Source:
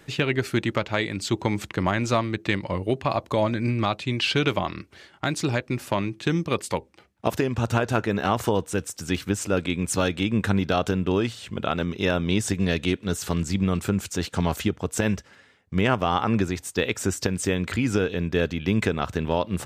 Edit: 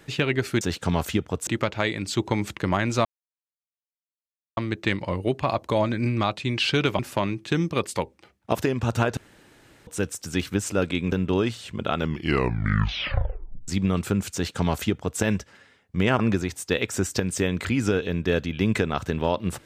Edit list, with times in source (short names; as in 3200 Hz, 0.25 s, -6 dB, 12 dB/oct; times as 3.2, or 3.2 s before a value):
2.19 insert silence 1.52 s
4.61–5.74 cut
7.92–8.62 room tone
9.87–10.9 cut
11.72 tape stop 1.74 s
14.12–14.98 copy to 0.61
15.97–16.26 cut